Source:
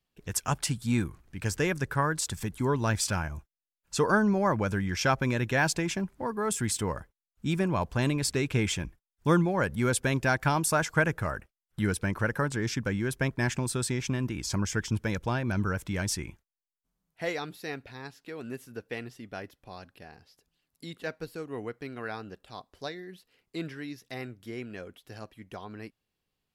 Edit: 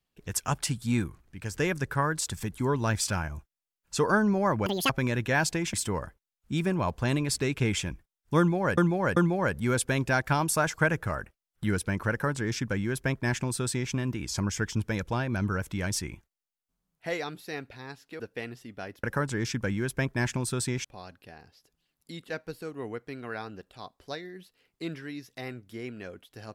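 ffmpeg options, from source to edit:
-filter_complex "[0:a]asplit=10[a][b][c][d][e][f][g][h][i][j];[a]atrim=end=1.54,asetpts=PTS-STARTPTS,afade=t=out:st=0.97:d=0.57:silence=0.501187[k];[b]atrim=start=1.54:end=4.664,asetpts=PTS-STARTPTS,afade=t=in:d=0.004:c=hsin:silence=0.501187[l];[c]atrim=start=4.66:end=5.13,asetpts=PTS-STARTPTS,asetrate=88200,aresample=44100[m];[d]atrim=start=5.126:end=5.972[n];[e]atrim=start=6.668:end=9.712[o];[f]atrim=start=9.318:end=9.712[p];[g]atrim=start=9.318:end=18.352[q];[h]atrim=start=18.738:end=19.582[r];[i]atrim=start=12.258:end=14.072[s];[j]atrim=start=19.578[t];[k][l]concat=n=2:v=0:a=1[u];[u][m]acrossfade=d=0.004:c1=hsin:c2=hsin[v];[v][n]acrossfade=d=0.004:c1=hsin:c2=hsin[w];[w][o]acrossfade=d=0.004:c1=hsin:c2=hsin[x];[x][p]acrossfade=d=0.004:c1=hsin:c2=hsin[y];[y][q]acrossfade=d=0.004:c1=hsin:c2=hsin[z];[z][r]acrossfade=d=0.004:c1=hsin:c2=hsin[aa];[aa][s]acrossfade=d=0.004:c1=hsin:c2=hsin[ab];[ab][t]acrossfade=d=0.004:c1=hsin:c2=hsin"

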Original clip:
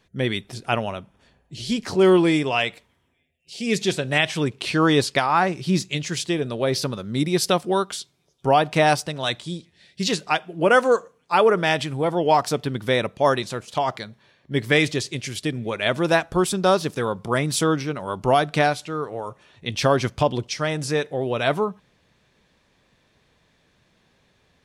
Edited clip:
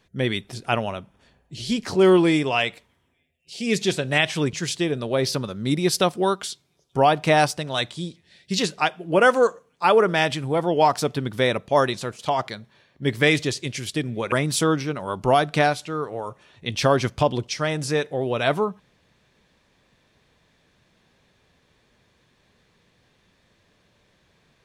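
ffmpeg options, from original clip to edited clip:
-filter_complex "[0:a]asplit=3[a][b][c];[a]atrim=end=4.532[d];[b]atrim=start=6.018:end=15.812[e];[c]atrim=start=17.318[f];[d][e]acrossfade=d=0.004:c1=hsin:c2=hsin[g];[g][f]acrossfade=d=0.004:c1=hsin:c2=hsin"

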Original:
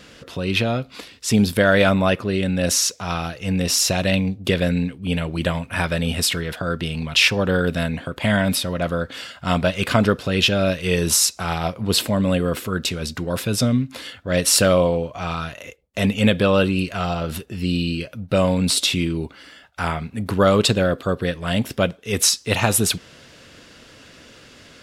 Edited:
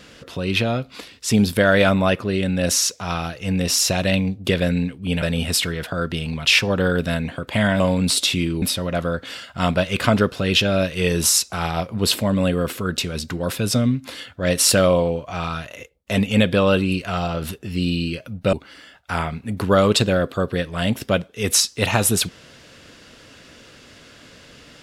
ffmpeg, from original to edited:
-filter_complex "[0:a]asplit=5[a][b][c][d][e];[a]atrim=end=5.222[f];[b]atrim=start=5.908:end=8.492[g];[c]atrim=start=18.398:end=19.222[h];[d]atrim=start=8.488:end=18.402[i];[e]atrim=start=19.218[j];[f][g]acrossfade=d=0.004:c1=hsin:c2=hsin[k];[k][h]acrossfade=d=0.004:c1=hsin:c2=hsin[l];[l][i]acrossfade=d=0.004:c1=hsin:c2=hsin[m];[m][j]acrossfade=d=0.004:c1=hsin:c2=hsin"

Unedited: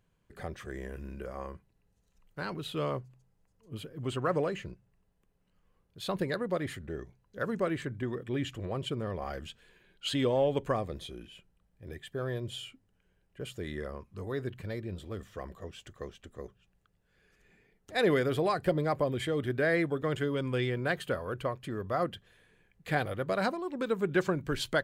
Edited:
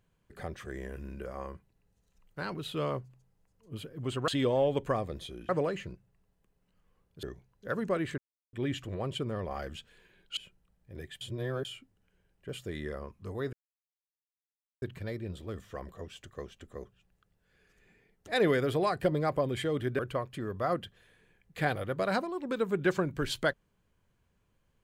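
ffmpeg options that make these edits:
-filter_complex "[0:a]asplit=11[a][b][c][d][e][f][g][h][i][j][k];[a]atrim=end=4.282[l];[b]atrim=start=10.078:end=11.292[m];[c]atrim=start=4.278:end=6.022[n];[d]atrim=start=6.938:end=7.89,asetpts=PTS-STARTPTS,afade=t=out:st=0.948:d=0.004:c=hsin[o];[e]atrim=start=7.89:end=8.24,asetpts=PTS-STARTPTS,volume=0[p];[f]atrim=start=8.24:end=10.082,asetpts=PTS-STARTPTS,afade=t=in:d=0.004:c=hsin[q];[g]atrim=start=11.288:end=12.132[r];[h]atrim=start=12.128:end=12.572,asetpts=PTS-STARTPTS,areverse[s];[i]atrim=start=12.568:end=14.45,asetpts=PTS-STARTPTS,afade=t=out:st=1.878:d=0.004:c=hsin,apad=pad_dur=1.29[t];[j]atrim=start=14.45:end=19.622,asetpts=PTS-STARTPTS,afade=t=in:d=0.004:c=hsin[u];[k]atrim=start=21.288[v];[l][m]acrossfade=d=0.004:c1=hsin:c2=hsin[w];[w][n]acrossfade=d=0.004:c1=hsin:c2=hsin[x];[o][p][q]concat=n=3:v=0:a=1[y];[x][y]acrossfade=d=0.004:c1=hsin:c2=hsin[z];[z][r]acrossfade=d=0.004:c1=hsin:c2=hsin[aa];[aa][s]acrossfade=d=0.004:c1=hsin:c2=hsin[ab];[t][u]concat=n=2:v=0:a=1[ac];[ab][ac]acrossfade=d=0.004:c1=hsin:c2=hsin[ad];[ad][v]acrossfade=d=0.004:c1=hsin:c2=hsin"

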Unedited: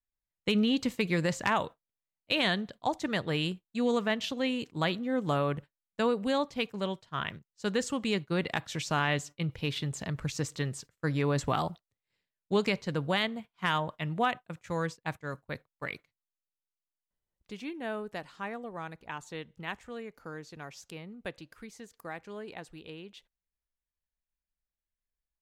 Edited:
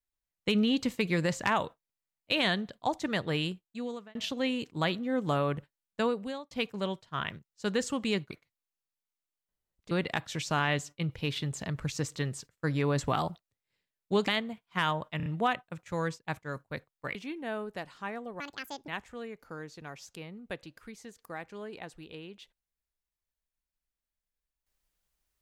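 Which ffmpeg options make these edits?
-filter_complex "[0:a]asplit=12[a][b][c][d][e][f][g][h][i][j][k][l];[a]atrim=end=4.15,asetpts=PTS-STARTPTS,afade=t=out:st=3.36:d=0.79[m];[b]atrim=start=4.15:end=6.51,asetpts=PTS-STARTPTS,afade=t=in:d=0.004:c=hsin,afade=t=out:st=1.85:d=0.51[n];[c]atrim=start=6.51:end=8.312,asetpts=PTS-STARTPTS,afade=t=in:d=0.004:c=hsin[o];[d]atrim=start=15.928:end=17.532[p];[e]atrim=start=8.308:end=12.682[q];[f]atrim=start=13.148:end=14.072[r];[g]atrim=start=14.038:end=14.072[s];[h]atrim=start=14.038:end=14.072[t];[i]atrim=start=14.038:end=15.932[u];[j]atrim=start=17.528:end=18.784[v];[k]atrim=start=18.78:end=19.63,asetpts=PTS-STARTPTS,asetrate=78057,aresample=44100[w];[l]atrim=start=19.626[x];[m][n][o]concat=n=3:v=0:a=1[y];[y][p]acrossfade=d=0.004:c1=hsin:c2=hsin[z];[z][q]acrossfade=d=0.004:c1=hsin:c2=hsin[aa];[aa][r]acrossfade=d=0.004:c1=hsin:c2=hsin[ab];[ab][s]acrossfade=d=0.004:c1=hsin:c2=hsin[ac];[ac][t]acrossfade=d=0.004:c1=hsin:c2=hsin[ad];[ad][u]acrossfade=d=0.004:c1=hsin:c2=hsin[ae];[ae][v]acrossfade=d=0.004:c1=hsin:c2=hsin[af];[af][w]acrossfade=d=0.004:c1=hsin:c2=hsin[ag];[ag][x]acrossfade=d=0.004:c1=hsin:c2=hsin"

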